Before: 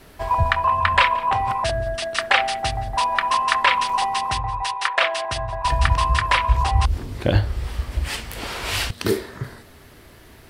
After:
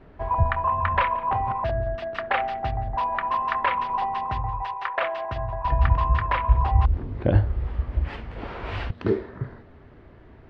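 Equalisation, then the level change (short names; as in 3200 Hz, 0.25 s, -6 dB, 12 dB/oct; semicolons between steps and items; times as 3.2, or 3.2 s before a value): tape spacing loss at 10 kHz 39 dB; high shelf 4800 Hz -11.5 dB; 0.0 dB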